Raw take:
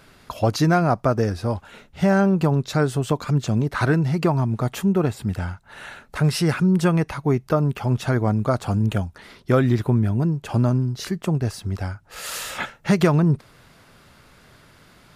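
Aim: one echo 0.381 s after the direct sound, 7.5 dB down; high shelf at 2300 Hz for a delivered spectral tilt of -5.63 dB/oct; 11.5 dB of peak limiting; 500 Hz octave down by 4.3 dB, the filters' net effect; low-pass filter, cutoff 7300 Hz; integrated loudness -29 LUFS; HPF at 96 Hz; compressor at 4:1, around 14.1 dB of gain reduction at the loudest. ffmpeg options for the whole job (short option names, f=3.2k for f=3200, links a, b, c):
-af "highpass=96,lowpass=7.3k,equalizer=f=500:t=o:g=-5.5,highshelf=f=2.3k:g=-4,acompressor=threshold=-33dB:ratio=4,alimiter=level_in=6dB:limit=-24dB:level=0:latency=1,volume=-6dB,aecho=1:1:381:0.422,volume=9.5dB"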